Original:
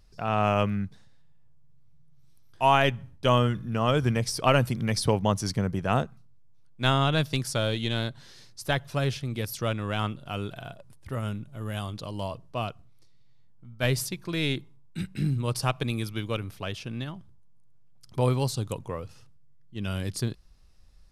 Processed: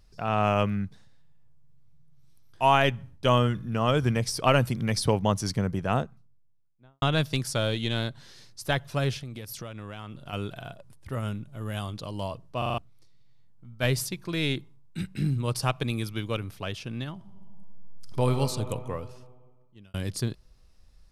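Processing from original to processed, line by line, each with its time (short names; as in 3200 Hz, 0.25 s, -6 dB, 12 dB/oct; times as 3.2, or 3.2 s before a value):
5.67–7.02 studio fade out
9.21–10.33 compressor 12:1, threshold -34 dBFS
12.58 stutter in place 0.04 s, 5 plays
17.13–18.31 reverb throw, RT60 2.9 s, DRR 5 dB
18.95–19.94 fade out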